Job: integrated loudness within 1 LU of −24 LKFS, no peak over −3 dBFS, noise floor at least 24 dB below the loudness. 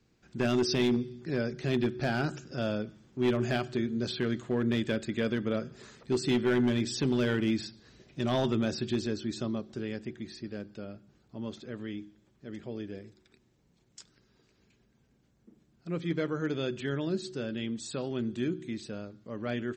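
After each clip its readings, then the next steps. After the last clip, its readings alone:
share of clipped samples 0.6%; peaks flattened at −20.5 dBFS; integrated loudness −32.0 LKFS; sample peak −20.5 dBFS; target loudness −24.0 LKFS
→ clipped peaks rebuilt −20.5 dBFS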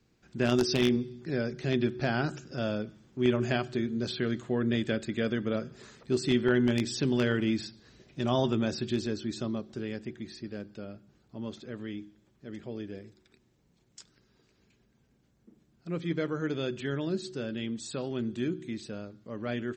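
share of clipped samples 0.0%; integrated loudness −31.5 LKFS; sample peak −11.5 dBFS; target loudness −24.0 LKFS
→ level +7.5 dB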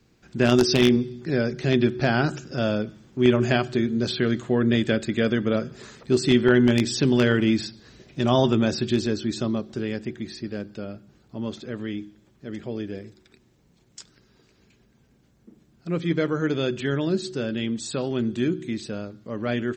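integrated loudness −24.0 LKFS; sample peak −4.0 dBFS; background noise floor −61 dBFS

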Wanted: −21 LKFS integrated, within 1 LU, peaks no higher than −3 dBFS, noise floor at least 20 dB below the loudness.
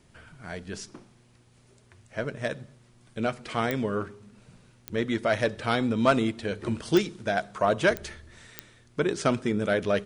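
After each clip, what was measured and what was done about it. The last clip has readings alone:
number of clicks 5; integrated loudness −27.5 LKFS; sample peak −8.0 dBFS; target loudness −21.0 LKFS
→ click removal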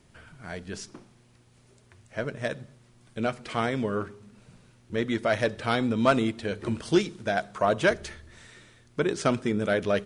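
number of clicks 0; integrated loudness −27.5 LKFS; sample peak −8.0 dBFS; target loudness −21.0 LKFS
→ level +6.5 dB
brickwall limiter −3 dBFS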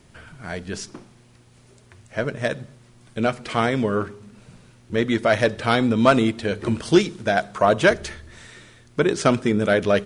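integrated loudness −21.0 LKFS; sample peak −3.0 dBFS; background noise floor −53 dBFS

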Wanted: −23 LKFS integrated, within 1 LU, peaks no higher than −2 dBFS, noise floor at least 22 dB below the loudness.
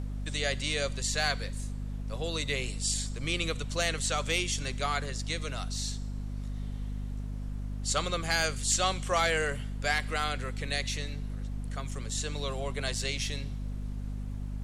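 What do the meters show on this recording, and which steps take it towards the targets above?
mains hum 50 Hz; hum harmonics up to 250 Hz; level of the hum −33 dBFS; background noise floor −37 dBFS; target noise floor −54 dBFS; integrated loudness −32.0 LKFS; sample peak −15.5 dBFS; target loudness −23.0 LKFS
→ mains-hum notches 50/100/150/200/250 Hz
noise reduction from a noise print 17 dB
level +9 dB

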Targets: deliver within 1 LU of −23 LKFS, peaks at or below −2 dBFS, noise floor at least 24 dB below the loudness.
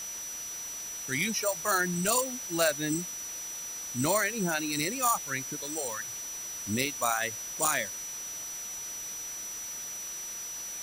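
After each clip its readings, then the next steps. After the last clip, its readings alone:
interfering tone 5,900 Hz; level of the tone −37 dBFS; background noise floor −39 dBFS; target noise floor −55 dBFS; integrated loudness −30.5 LKFS; sample peak −13.0 dBFS; target loudness −23.0 LKFS
→ notch filter 5,900 Hz, Q 30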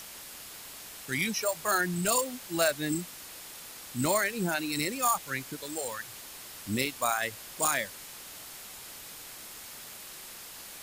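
interfering tone none found; background noise floor −46 dBFS; target noise floor −54 dBFS
→ broadband denoise 8 dB, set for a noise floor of −46 dBFS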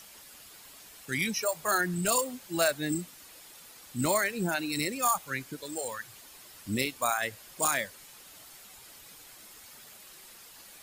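background noise floor −52 dBFS; target noise floor −54 dBFS
→ broadband denoise 6 dB, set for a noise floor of −52 dBFS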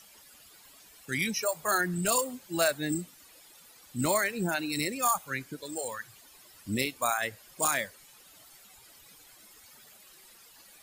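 background noise floor −56 dBFS; integrated loudness −30.0 LKFS; sample peak −13.5 dBFS; target loudness −23.0 LKFS
→ level +7 dB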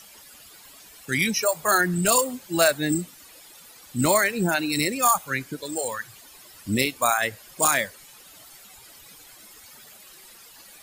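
integrated loudness −23.0 LKFS; sample peak −6.5 dBFS; background noise floor −49 dBFS

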